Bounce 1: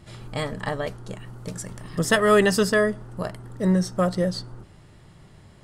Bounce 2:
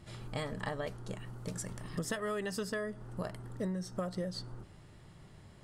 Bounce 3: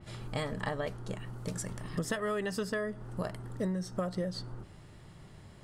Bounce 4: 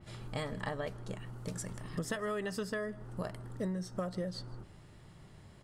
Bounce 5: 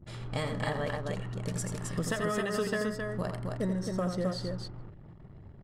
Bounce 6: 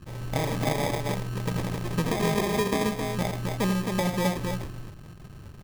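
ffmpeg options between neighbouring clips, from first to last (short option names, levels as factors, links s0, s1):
-af "acompressor=threshold=0.0447:ratio=16,volume=0.531"
-af "adynamicequalizer=threshold=0.00126:dfrequency=3900:dqfactor=0.7:tfrequency=3900:tqfactor=0.7:attack=5:release=100:ratio=0.375:range=2:mode=cutabove:tftype=highshelf,volume=1.41"
-af "aecho=1:1:157:0.0668,volume=0.708"
-af "aecho=1:1:84.55|265.3:0.447|0.631,anlmdn=0.000631,volume=1.58"
-af "acrusher=samples=31:mix=1:aa=0.000001,volume=1.88"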